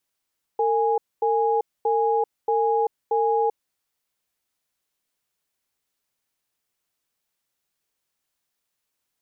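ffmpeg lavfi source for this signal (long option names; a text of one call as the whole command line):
ffmpeg -f lavfi -i "aevalsrc='0.0891*(sin(2*PI*454*t)+sin(2*PI*828*t))*clip(min(mod(t,0.63),0.39-mod(t,0.63))/0.005,0,1)':duration=3.12:sample_rate=44100" out.wav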